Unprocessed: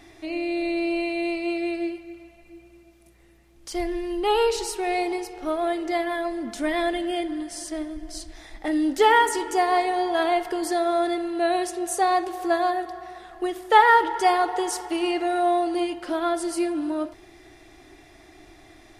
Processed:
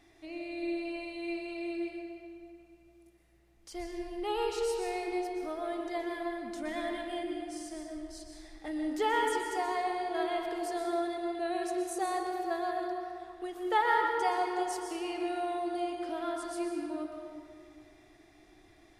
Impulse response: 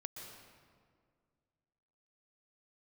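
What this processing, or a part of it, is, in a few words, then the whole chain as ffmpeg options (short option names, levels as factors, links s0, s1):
stairwell: -filter_complex "[1:a]atrim=start_sample=2205[s0];[0:a][s0]afir=irnorm=-1:irlink=0,volume=0.422"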